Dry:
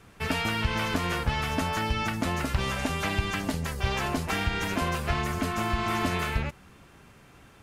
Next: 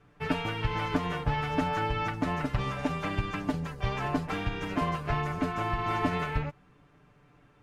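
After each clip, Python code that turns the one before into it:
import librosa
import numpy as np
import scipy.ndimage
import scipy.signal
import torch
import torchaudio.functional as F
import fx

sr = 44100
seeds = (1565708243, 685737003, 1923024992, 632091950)

y = fx.lowpass(x, sr, hz=1600.0, slope=6)
y = y + 0.68 * np.pad(y, (int(6.8 * sr / 1000.0), 0))[:len(y)]
y = fx.upward_expand(y, sr, threshold_db=-38.0, expansion=1.5)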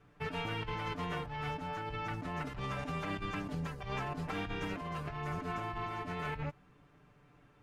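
y = fx.over_compress(x, sr, threshold_db=-33.0, ratio=-1.0)
y = F.gain(torch.from_numpy(y), -5.5).numpy()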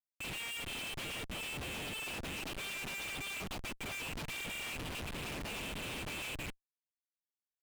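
y = fx.brickwall_highpass(x, sr, low_hz=2300.0)
y = fx.schmitt(y, sr, flips_db=-55.5)
y = fx.doppler_dist(y, sr, depth_ms=0.29)
y = F.gain(torch.from_numpy(y), 11.0).numpy()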